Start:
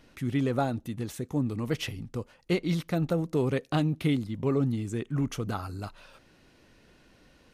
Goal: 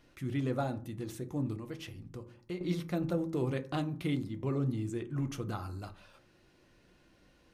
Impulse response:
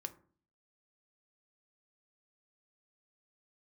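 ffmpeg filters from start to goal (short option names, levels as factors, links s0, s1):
-filter_complex "[1:a]atrim=start_sample=2205[s0];[0:a][s0]afir=irnorm=-1:irlink=0,asettb=1/sr,asplit=3[s1][s2][s3];[s1]atrim=end=1.564[s4];[s2]atrim=start=1.56:end=2.61,asetpts=PTS-STARTPTS,afade=t=in:d=0.004:c=qsin,afade=t=out:st=1.046:d=0.004:c=qsin,acompressor=threshold=0.00891:ratio=2[s5];[s3]atrim=start=2.606[s6];[s4][s5]acrossfade=d=0.004:c1=hsin:c2=qsin[s7];[s7][s6]acrossfade=d=0.004:c1=qsin:c2=hsin,volume=0.708"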